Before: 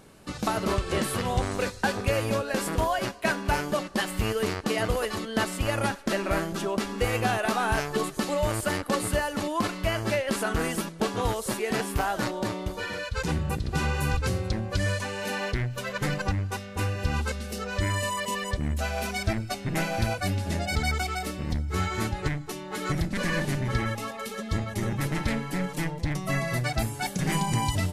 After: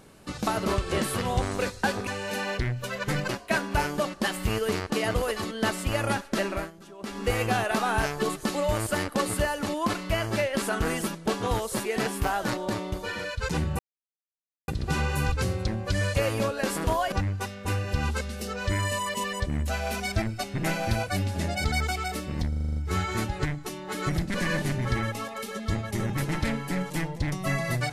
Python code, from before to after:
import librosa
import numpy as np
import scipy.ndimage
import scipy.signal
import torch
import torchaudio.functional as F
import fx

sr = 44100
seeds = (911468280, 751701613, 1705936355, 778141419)

y = fx.edit(x, sr, fx.swap(start_s=2.07, length_s=0.96, other_s=15.01, other_length_s=1.22),
    fx.fade_down_up(start_s=6.2, length_s=0.77, db=-17.0, fade_s=0.25),
    fx.insert_silence(at_s=13.53, length_s=0.89),
    fx.stutter(start_s=21.59, slice_s=0.04, count=8), tone=tone)